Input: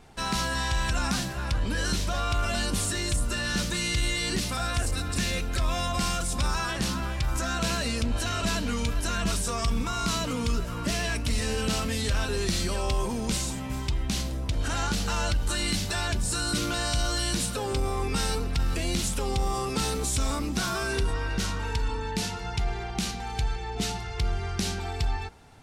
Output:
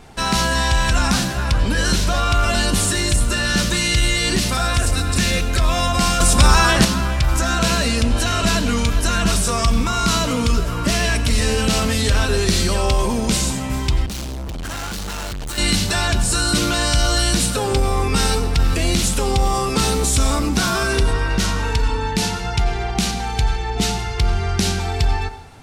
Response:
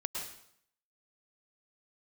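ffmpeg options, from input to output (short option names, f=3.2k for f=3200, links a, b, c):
-filter_complex "[0:a]asplit=2[a][b];[1:a]atrim=start_sample=2205,asetrate=52920,aresample=44100[c];[b][c]afir=irnorm=-1:irlink=0,volume=-7dB[d];[a][d]amix=inputs=2:normalize=0,asettb=1/sr,asplit=3[e][f][g];[e]atrim=end=6.204[h];[f]atrim=start=6.2:end=6.85,asetpts=PTS-STARTPTS,afade=t=in:d=0.004:c=qsin,afade=t=out:st=0.646:d=0.004:c=qsin,acontrast=41[i];[g]atrim=start=6.846[j];[h][i]acrossfade=d=0.004:c1=hsin:c2=qsin[k];[k][j]acrossfade=d=0.004:c1=qsin:c2=hsin,asettb=1/sr,asplit=3[l][m][n];[l]atrim=end=14.064[o];[m]atrim=start=14.06:end=15.58,asetpts=PTS-STARTPTS,afade=t=in:d=0.004:c=qsin,afade=t=out:st=1.516:d=0.004:c=qsin,volume=33dB,asoftclip=hard,volume=-33dB[p];[n]atrim=start=15.576[q];[o][p]acrossfade=d=0.004:c1=hsin:c2=qsin[r];[r][q]acrossfade=d=0.004:c1=qsin:c2=hsin,volume=7dB"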